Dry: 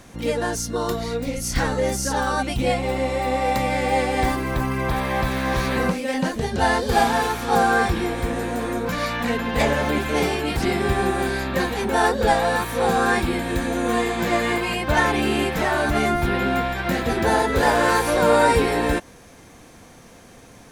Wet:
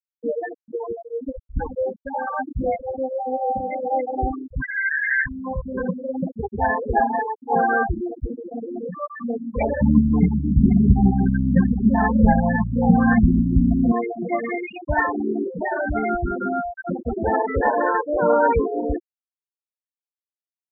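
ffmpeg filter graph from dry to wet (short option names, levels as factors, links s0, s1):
-filter_complex "[0:a]asettb=1/sr,asplit=3[s0][s1][s2];[s0]atrim=end=4.624[s3];[s1]atrim=start=4.62:end=5.26,asetpts=PTS-STARTPTS,afade=t=in:d=0.004:c=qsin,afade=t=out:st=0.636:d=0.004:c=qsin,highpass=f=1700:t=q:w=6.6,asoftclip=type=hard:threshold=0.211[s4];[s2]atrim=start=5.256[s5];[s3][s4]acrossfade=d=0.004:c1=hsin:c2=qsin[s6];[s6][s5]acrossfade=d=0.004:c1=qsin:c2=hsin,asettb=1/sr,asplit=3[s7][s8][s9];[s7]atrim=end=9.814[s10];[s8]atrim=start=9.81:end=13.92,asetpts=PTS-STARTPTS,afade=t=in:d=0.004:c=qsin,afade=t=out:st=4.106:d=0.004:c=qsin,lowshelf=f=280:t=q:w=3:g=9,aecho=1:1:145:0.168,atrim=end_sample=181251[s11];[s9]atrim=start=13.916[s12];[s10][s11]acrossfade=d=0.004:c1=hsin:c2=qsin[s13];[s13][s12]acrossfade=d=0.004:c1=qsin:c2=hsin,equalizer=f=130:w=2.4:g=-3.5,afftfilt=real='re*gte(hypot(re,im),0.316)':imag='im*gte(hypot(re,im),0.316)':win_size=1024:overlap=0.75"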